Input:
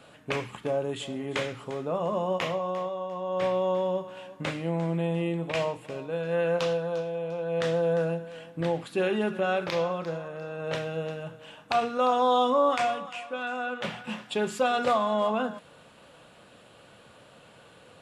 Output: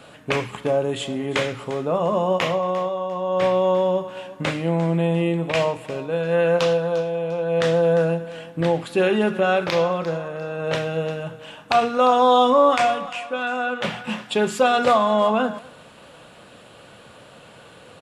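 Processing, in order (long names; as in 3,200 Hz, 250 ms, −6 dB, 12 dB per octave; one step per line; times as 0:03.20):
far-end echo of a speakerphone 230 ms, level −23 dB
level +7.5 dB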